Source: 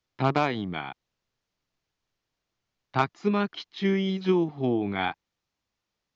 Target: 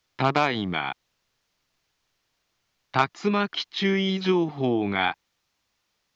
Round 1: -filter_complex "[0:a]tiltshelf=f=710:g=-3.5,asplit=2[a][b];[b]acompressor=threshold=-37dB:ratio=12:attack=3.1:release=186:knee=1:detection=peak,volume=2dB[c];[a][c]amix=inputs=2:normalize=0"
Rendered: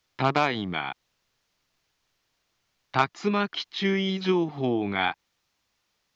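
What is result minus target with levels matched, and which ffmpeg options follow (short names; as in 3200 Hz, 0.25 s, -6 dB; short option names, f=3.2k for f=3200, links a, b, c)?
compressor: peak gain reduction +7 dB
-filter_complex "[0:a]tiltshelf=f=710:g=-3.5,asplit=2[a][b];[b]acompressor=threshold=-29.5dB:ratio=12:attack=3.1:release=186:knee=1:detection=peak,volume=2dB[c];[a][c]amix=inputs=2:normalize=0"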